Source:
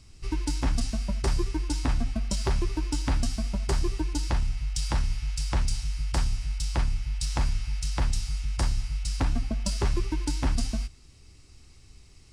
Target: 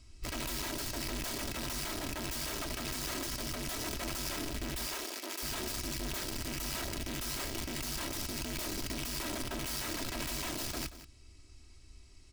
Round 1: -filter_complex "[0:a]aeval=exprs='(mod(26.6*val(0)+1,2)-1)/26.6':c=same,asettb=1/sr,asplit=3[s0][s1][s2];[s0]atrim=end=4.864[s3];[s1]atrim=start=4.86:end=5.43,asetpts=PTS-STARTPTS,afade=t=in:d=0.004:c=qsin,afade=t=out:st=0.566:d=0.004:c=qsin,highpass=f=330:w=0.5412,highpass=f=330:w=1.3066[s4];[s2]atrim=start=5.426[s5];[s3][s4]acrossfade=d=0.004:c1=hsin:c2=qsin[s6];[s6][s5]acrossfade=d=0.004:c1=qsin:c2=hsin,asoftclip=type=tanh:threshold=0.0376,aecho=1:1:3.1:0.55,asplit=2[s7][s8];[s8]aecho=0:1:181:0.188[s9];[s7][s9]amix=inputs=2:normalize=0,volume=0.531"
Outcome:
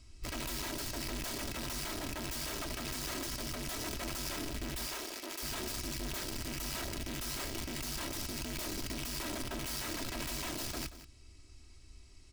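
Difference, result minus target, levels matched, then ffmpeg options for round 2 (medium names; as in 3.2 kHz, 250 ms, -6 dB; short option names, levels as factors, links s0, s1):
saturation: distortion +16 dB
-filter_complex "[0:a]aeval=exprs='(mod(26.6*val(0)+1,2)-1)/26.6':c=same,asettb=1/sr,asplit=3[s0][s1][s2];[s0]atrim=end=4.864[s3];[s1]atrim=start=4.86:end=5.43,asetpts=PTS-STARTPTS,afade=t=in:d=0.004:c=qsin,afade=t=out:st=0.566:d=0.004:c=qsin,highpass=f=330:w=0.5412,highpass=f=330:w=1.3066[s4];[s2]atrim=start=5.426[s5];[s3][s4]acrossfade=d=0.004:c1=hsin:c2=qsin[s6];[s6][s5]acrossfade=d=0.004:c1=qsin:c2=hsin,asoftclip=type=tanh:threshold=0.112,aecho=1:1:3.1:0.55,asplit=2[s7][s8];[s8]aecho=0:1:181:0.188[s9];[s7][s9]amix=inputs=2:normalize=0,volume=0.531"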